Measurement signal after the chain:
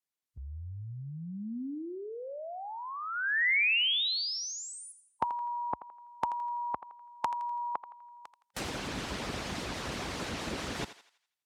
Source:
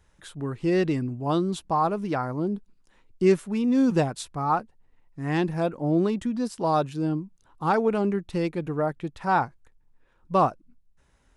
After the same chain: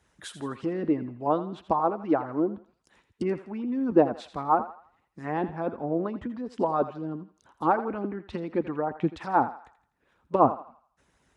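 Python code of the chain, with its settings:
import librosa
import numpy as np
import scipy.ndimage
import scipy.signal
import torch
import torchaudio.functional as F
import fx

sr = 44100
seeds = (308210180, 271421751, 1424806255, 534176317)

y = fx.env_lowpass_down(x, sr, base_hz=1100.0, full_db=-23.0)
y = scipy.signal.sosfilt(scipy.signal.butter(4, 54.0, 'highpass', fs=sr, output='sos'), y)
y = fx.hpss(y, sr, part='harmonic', gain_db=-16)
y = fx.dynamic_eq(y, sr, hz=250.0, q=1.4, threshold_db=-48.0, ratio=4.0, max_db=4)
y = fx.echo_thinned(y, sr, ms=83, feedback_pct=44, hz=650.0, wet_db=-11.5)
y = y * librosa.db_to_amplitude(4.5)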